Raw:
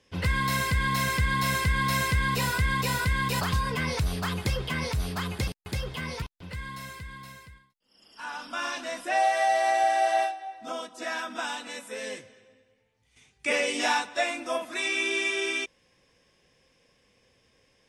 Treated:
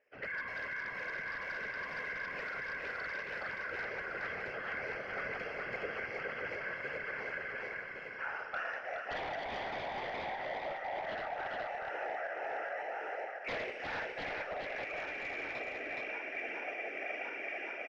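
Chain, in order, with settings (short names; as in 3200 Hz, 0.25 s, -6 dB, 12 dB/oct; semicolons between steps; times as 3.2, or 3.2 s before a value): regenerating reverse delay 0.558 s, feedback 65%, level -5 dB; HPF 160 Hz 24 dB/oct; three-band isolator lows -14 dB, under 450 Hz, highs -12 dB, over 5300 Hz; fixed phaser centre 1000 Hz, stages 6; whisperiser; wavefolder -26.5 dBFS; air absorption 280 m; echo 0.419 s -3.5 dB; vocal rider; reverb RT60 1.5 s, pre-delay 34 ms, DRR 12.5 dB; gain -5 dB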